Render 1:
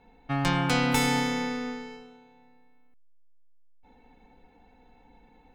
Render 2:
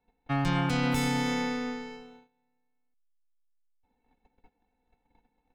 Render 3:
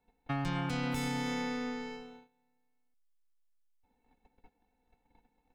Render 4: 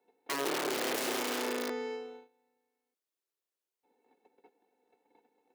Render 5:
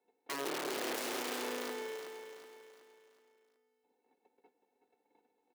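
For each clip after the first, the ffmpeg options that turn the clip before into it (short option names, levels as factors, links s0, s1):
-filter_complex "[0:a]agate=range=0.112:threshold=0.00224:ratio=16:detection=peak,acrossover=split=280[s0][s1];[s1]alimiter=limit=0.0708:level=0:latency=1:release=69[s2];[s0][s2]amix=inputs=2:normalize=0"
-af "acompressor=threshold=0.02:ratio=2.5"
-af "aeval=exprs='(mod(28.2*val(0)+1,2)-1)/28.2':c=same,highpass=f=380:t=q:w=3.5"
-af "aecho=1:1:373|746|1119|1492|1865:0.376|0.165|0.0728|0.032|0.0141,volume=0.562"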